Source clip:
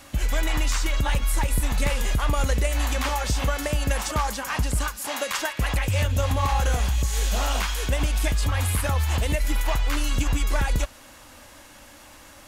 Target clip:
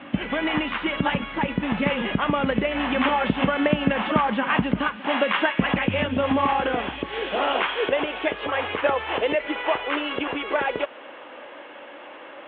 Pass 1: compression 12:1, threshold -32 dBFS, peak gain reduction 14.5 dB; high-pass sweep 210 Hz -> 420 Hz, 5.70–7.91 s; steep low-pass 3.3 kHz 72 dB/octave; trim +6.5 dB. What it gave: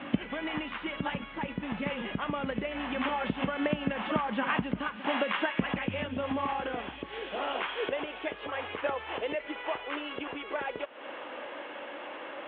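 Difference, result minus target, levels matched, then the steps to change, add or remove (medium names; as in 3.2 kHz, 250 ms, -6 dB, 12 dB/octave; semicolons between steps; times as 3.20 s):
compression: peak gain reduction +10.5 dB
change: compression 12:1, threshold -20.5 dBFS, peak gain reduction 4 dB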